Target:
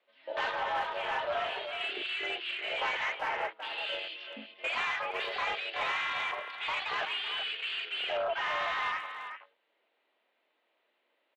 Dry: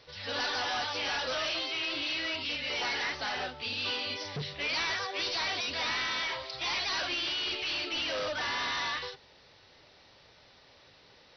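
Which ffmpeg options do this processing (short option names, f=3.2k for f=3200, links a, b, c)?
-filter_complex "[0:a]aemphasis=mode=production:type=bsi,afwtdn=0.0224,highpass=f=190:t=q:w=0.5412,highpass=f=190:t=q:w=1.307,lowpass=f=3k:t=q:w=0.5176,lowpass=f=3k:t=q:w=0.7071,lowpass=f=3k:t=q:w=1.932,afreqshift=72,asplit=2[a][b];[b]adynamicsmooth=sensitivity=2:basefreq=670,volume=0.5dB[c];[a][c]amix=inputs=2:normalize=0,asettb=1/sr,asplit=3[d][e][f];[d]atrim=end=0.514[g];[e]atrim=start=0.51:end=1.81,asetpts=PTS-STARTPTS,afade=t=in:d=0.004:c=qsin,afade=t=out:st=1.296:d=0.004:c=qsin,highshelf=f=2.2k:g=-6[h];[f]atrim=start=1.806[i];[g][h]acrossfade=d=0.004:c1=hsin:c2=qsin[j];[j][i]acrossfade=d=0.004:c1=qsin:c2=hsin,asplit=2[k][l];[l]adelay=380,highpass=300,lowpass=3.4k,asoftclip=type=hard:threshold=-27dB,volume=-8dB[m];[k][m]amix=inputs=2:normalize=0"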